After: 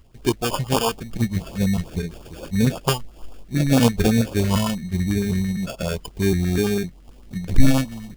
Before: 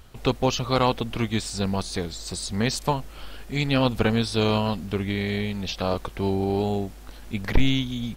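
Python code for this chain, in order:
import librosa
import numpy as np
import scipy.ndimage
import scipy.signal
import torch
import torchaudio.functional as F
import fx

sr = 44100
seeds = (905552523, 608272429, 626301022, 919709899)

y = fx.pitch_trill(x, sr, semitones=-1.5, every_ms=253)
y = fx.peak_eq(y, sr, hz=570.0, db=-6.5, octaves=0.45)
y = fx.sample_hold(y, sr, seeds[0], rate_hz=2000.0, jitter_pct=0)
y = fx.noise_reduce_blind(y, sr, reduce_db=11)
y = fx.filter_lfo_notch(y, sr, shape='saw_up', hz=9.0, low_hz=660.0, high_hz=2100.0, q=0.82)
y = F.gain(torch.from_numpy(y), 8.0).numpy()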